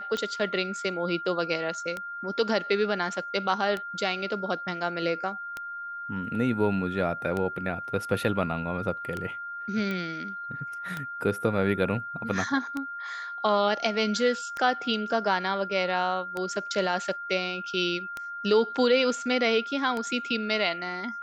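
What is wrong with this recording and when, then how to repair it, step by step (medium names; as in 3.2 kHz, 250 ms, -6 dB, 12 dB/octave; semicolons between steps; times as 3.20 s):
tick 33 1/3 rpm -18 dBFS
whine 1.4 kHz -34 dBFS
9.91 s: pop -20 dBFS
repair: de-click; band-stop 1.4 kHz, Q 30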